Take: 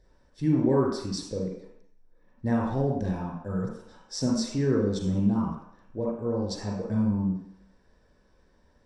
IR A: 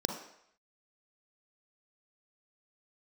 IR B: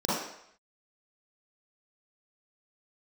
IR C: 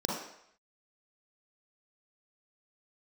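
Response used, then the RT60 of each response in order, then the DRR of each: C; 0.70, 0.70, 0.70 seconds; 3.0, −9.5, −3.5 decibels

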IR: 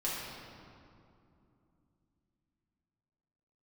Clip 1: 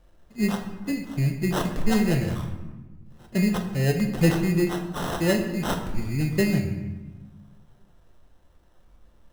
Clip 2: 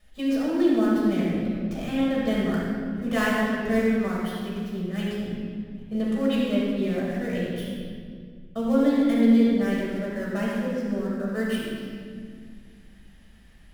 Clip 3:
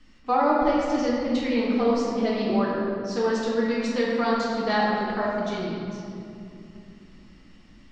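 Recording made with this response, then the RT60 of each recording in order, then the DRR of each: 3; 1.2, 2.0, 2.7 seconds; 3.5, −7.5, −7.5 decibels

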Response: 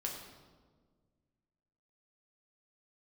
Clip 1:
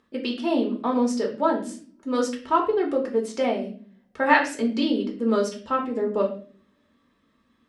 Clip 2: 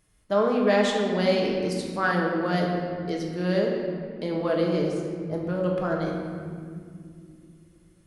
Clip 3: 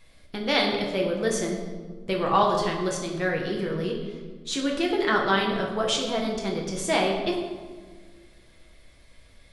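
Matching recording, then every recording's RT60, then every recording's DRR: 3; 0.45, 2.4, 1.6 seconds; −0.5, −1.5, −1.0 decibels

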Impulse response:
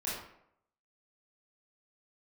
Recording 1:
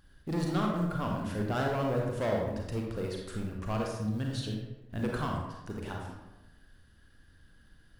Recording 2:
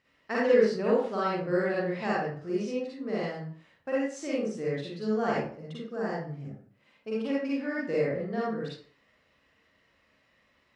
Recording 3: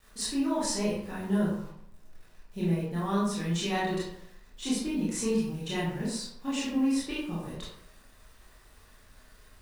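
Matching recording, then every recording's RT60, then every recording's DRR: 3; 1.0, 0.50, 0.75 seconds; −0.5, −7.0, −9.0 decibels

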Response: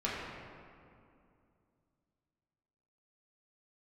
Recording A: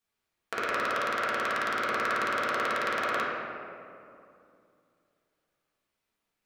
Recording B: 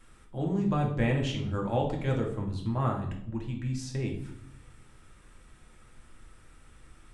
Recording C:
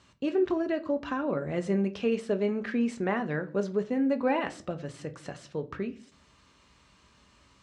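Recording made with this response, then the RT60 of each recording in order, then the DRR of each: A; 2.5, 0.70, 0.45 seconds; −8.0, −0.5, 7.5 decibels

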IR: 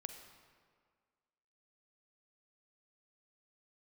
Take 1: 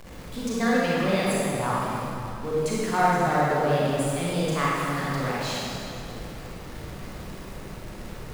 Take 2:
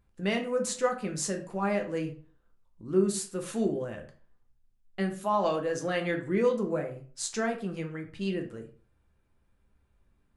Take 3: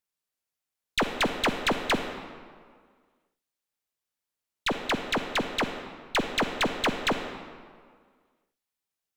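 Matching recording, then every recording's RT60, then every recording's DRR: 3; 2.7, 0.45, 1.8 seconds; −7.0, 3.0, 6.5 decibels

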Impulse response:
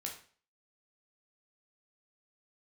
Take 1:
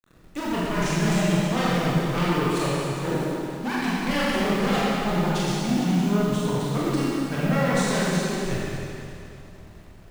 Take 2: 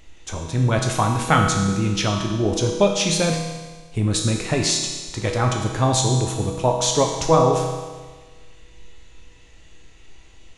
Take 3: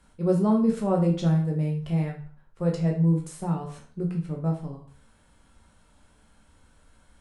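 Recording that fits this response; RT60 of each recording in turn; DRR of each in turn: 3; 2.7, 1.4, 0.45 seconds; −8.0, 1.0, −0.5 decibels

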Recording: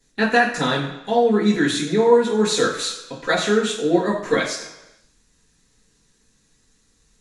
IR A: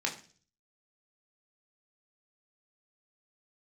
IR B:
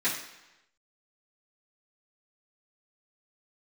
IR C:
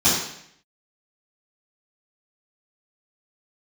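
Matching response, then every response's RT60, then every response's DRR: B; 0.40, 1.0, 0.70 seconds; 0.0, −12.0, −11.5 decibels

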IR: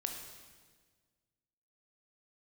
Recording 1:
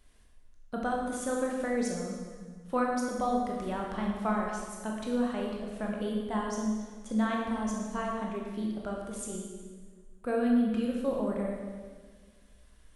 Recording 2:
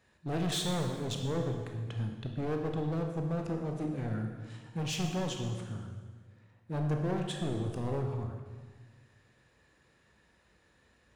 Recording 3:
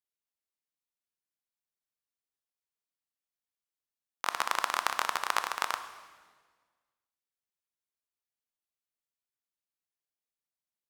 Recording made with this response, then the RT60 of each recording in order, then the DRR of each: 2; 1.5, 1.5, 1.5 seconds; −1.5, 2.5, 9.0 decibels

